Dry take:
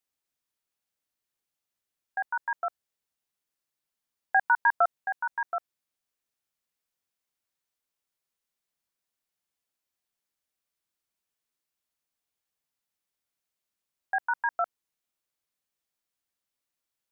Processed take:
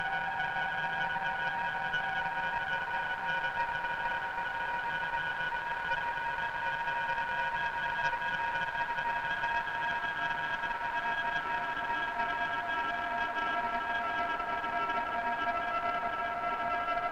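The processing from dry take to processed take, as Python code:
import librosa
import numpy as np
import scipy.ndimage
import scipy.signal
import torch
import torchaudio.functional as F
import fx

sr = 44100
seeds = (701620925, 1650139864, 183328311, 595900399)

y = fx.transient(x, sr, attack_db=-7, sustain_db=10)
y = fx.paulstretch(y, sr, seeds[0], factor=46.0, window_s=0.5, from_s=2.27)
y = fx.cheby_harmonics(y, sr, harmonics=(4,), levels_db=(-14,), full_scale_db=-22.0)
y = y * 10.0 ** (2.5 / 20.0)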